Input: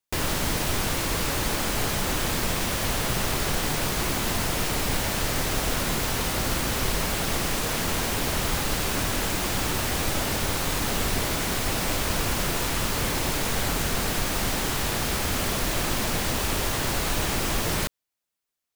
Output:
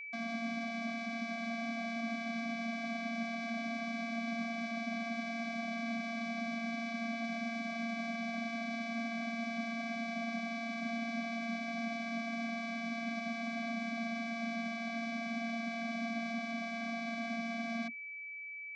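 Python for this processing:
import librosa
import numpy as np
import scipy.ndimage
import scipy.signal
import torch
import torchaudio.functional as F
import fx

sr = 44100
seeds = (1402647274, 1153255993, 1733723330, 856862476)

y = fx.fixed_phaser(x, sr, hz=1700.0, stages=8)
y = fx.vocoder(y, sr, bands=16, carrier='square', carrier_hz=230.0)
y = y + 10.0 ** (-36.0 / 20.0) * np.sin(2.0 * np.pi * 2300.0 * np.arange(len(y)) / sr)
y = y * 10.0 ** (-6.5 / 20.0)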